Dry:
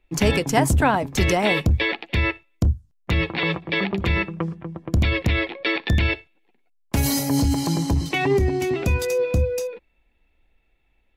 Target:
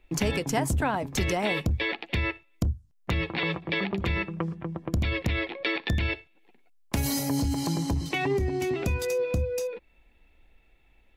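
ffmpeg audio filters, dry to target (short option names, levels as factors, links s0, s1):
-af "acompressor=threshold=0.0126:ratio=2,volume=1.68"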